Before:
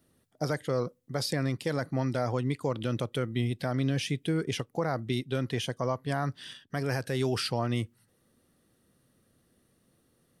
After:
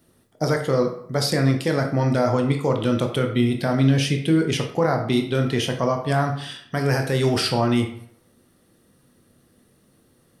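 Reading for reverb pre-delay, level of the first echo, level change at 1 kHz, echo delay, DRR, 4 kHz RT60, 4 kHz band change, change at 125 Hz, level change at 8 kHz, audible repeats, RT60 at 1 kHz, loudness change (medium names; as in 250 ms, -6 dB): 14 ms, no echo, +9.5 dB, no echo, 3.0 dB, 0.45 s, +8.5 dB, +9.0 dB, +8.5 dB, no echo, 0.70 s, +9.5 dB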